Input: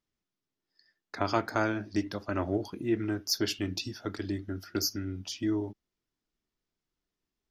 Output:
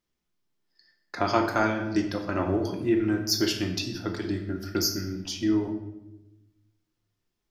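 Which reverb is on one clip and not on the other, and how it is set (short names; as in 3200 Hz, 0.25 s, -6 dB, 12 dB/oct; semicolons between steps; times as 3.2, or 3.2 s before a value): shoebox room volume 390 m³, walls mixed, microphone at 0.88 m; gain +3 dB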